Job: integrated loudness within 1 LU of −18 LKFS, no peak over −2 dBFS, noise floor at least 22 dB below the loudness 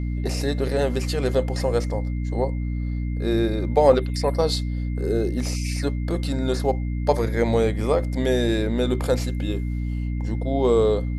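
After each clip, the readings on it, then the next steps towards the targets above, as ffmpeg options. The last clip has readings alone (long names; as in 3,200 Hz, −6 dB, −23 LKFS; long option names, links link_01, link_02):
mains hum 60 Hz; hum harmonics up to 300 Hz; level of the hum −23 dBFS; interfering tone 2,100 Hz; level of the tone −48 dBFS; integrated loudness −23.5 LKFS; sample peak −3.5 dBFS; target loudness −18.0 LKFS
→ -af "bandreject=frequency=60:width_type=h:width=4,bandreject=frequency=120:width_type=h:width=4,bandreject=frequency=180:width_type=h:width=4,bandreject=frequency=240:width_type=h:width=4,bandreject=frequency=300:width_type=h:width=4"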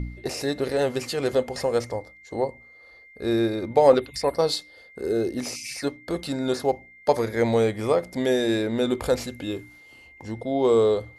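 mains hum none found; interfering tone 2,100 Hz; level of the tone −48 dBFS
→ -af "bandreject=frequency=2100:width=30"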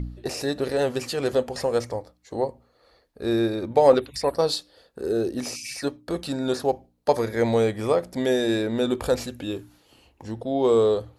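interfering tone none found; integrated loudness −25.0 LKFS; sample peak −4.0 dBFS; target loudness −18.0 LKFS
→ -af "volume=7dB,alimiter=limit=-2dB:level=0:latency=1"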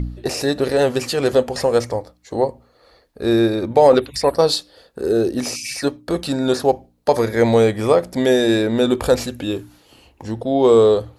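integrated loudness −18.0 LKFS; sample peak −2.0 dBFS; background noise floor −57 dBFS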